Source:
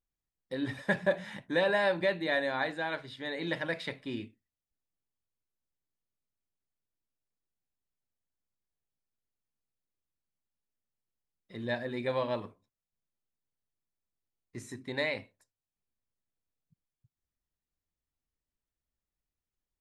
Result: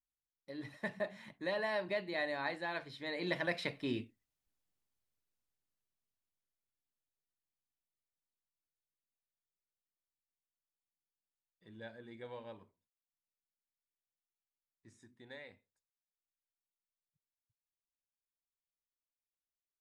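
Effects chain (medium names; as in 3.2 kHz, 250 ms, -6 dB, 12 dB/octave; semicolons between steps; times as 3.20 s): Doppler pass-by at 4.55 s, 21 m/s, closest 18 m; trim +2.5 dB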